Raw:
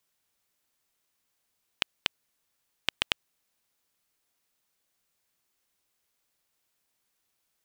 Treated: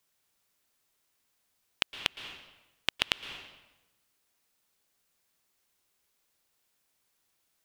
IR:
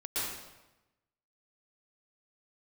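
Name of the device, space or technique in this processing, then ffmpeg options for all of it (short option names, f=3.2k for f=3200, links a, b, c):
ducked reverb: -filter_complex "[0:a]asplit=3[a][b][c];[1:a]atrim=start_sample=2205[d];[b][d]afir=irnorm=-1:irlink=0[e];[c]apad=whole_len=337290[f];[e][f]sidechaincompress=threshold=-35dB:ratio=4:attack=5.4:release=173,volume=-11dB[g];[a][g]amix=inputs=2:normalize=0"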